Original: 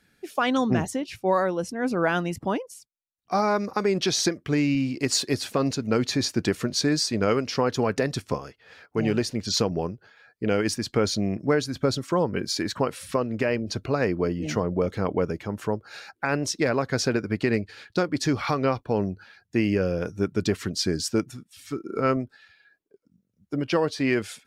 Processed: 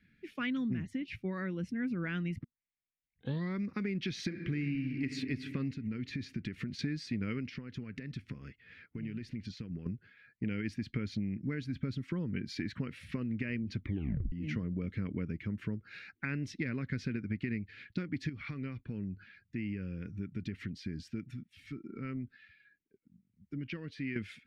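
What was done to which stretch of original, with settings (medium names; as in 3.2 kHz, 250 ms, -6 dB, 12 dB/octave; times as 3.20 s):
2.44 s: tape start 1.19 s
4.26–5.07 s: reverb throw, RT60 2.4 s, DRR 5.5 dB
5.72–6.79 s: compression, threshold -30 dBFS
7.49–9.86 s: compression 12:1, threshold -33 dBFS
13.79 s: tape stop 0.53 s
18.29–24.16 s: compression 2:1, threshold -38 dBFS
whole clip: FFT filter 240 Hz 0 dB, 780 Hz -28 dB, 2.1 kHz 0 dB, 7.3 kHz -25 dB; compression, threshold -32 dBFS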